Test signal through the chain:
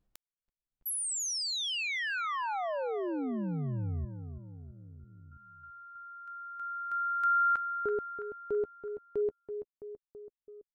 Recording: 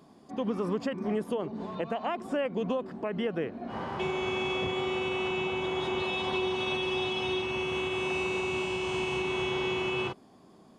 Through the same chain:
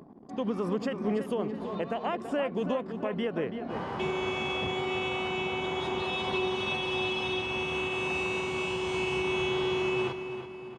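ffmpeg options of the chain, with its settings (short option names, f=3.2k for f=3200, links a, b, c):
-filter_complex "[0:a]asplit=2[a][b];[b]adelay=331,lowpass=f=4.2k:p=1,volume=-9dB,asplit=2[c][d];[d]adelay=331,lowpass=f=4.2k:p=1,volume=0.52,asplit=2[e][f];[f]adelay=331,lowpass=f=4.2k:p=1,volume=0.52,asplit=2[g][h];[h]adelay=331,lowpass=f=4.2k:p=1,volume=0.52,asplit=2[i][j];[j]adelay=331,lowpass=f=4.2k:p=1,volume=0.52,asplit=2[k][l];[l]adelay=331,lowpass=f=4.2k:p=1,volume=0.52[m];[a][c][e][g][i][k][m]amix=inputs=7:normalize=0,anlmdn=0.000631,acompressor=mode=upward:threshold=-43dB:ratio=2.5"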